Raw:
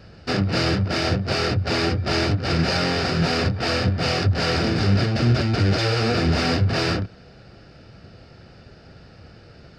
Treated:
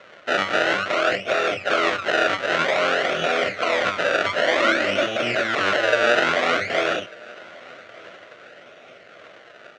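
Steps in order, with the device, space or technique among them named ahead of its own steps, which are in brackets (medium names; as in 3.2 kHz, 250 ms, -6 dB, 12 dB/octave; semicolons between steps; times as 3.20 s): 4.41–5.07 s: comb 3.4 ms, depth 80%; high-order bell 2.8 kHz -10 dB 3 oct; circuit-bent sampling toy (decimation with a swept rate 28×, swing 100% 0.54 Hz; cabinet simulation 600–5400 Hz, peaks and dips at 600 Hz +8 dB, 890 Hz -9 dB, 1.4 kHz +9 dB, 2 kHz +5 dB, 2.9 kHz +4 dB, 5 kHz -6 dB); feedback delay 1194 ms, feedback 46%, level -24 dB; trim +6 dB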